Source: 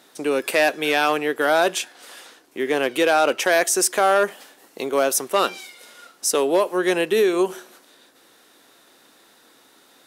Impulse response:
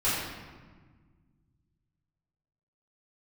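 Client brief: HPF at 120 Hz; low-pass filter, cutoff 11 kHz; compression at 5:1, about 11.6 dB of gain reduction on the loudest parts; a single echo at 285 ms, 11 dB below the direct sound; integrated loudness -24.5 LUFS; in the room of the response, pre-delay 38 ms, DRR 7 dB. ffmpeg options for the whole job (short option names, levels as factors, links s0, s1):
-filter_complex "[0:a]highpass=120,lowpass=11000,acompressor=threshold=0.0447:ratio=5,aecho=1:1:285:0.282,asplit=2[s0][s1];[1:a]atrim=start_sample=2205,adelay=38[s2];[s1][s2]afir=irnorm=-1:irlink=0,volume=0.112[s3];[s0][s3]amix=inputs=2:normalize=0,volume=1.88"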